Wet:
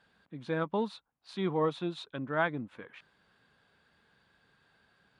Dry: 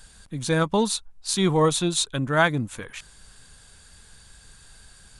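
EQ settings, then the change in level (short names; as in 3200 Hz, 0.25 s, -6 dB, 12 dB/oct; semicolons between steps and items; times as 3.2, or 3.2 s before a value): HPF 200 Hz 12 dB/oct; air absorption 380 m; -7.5 dB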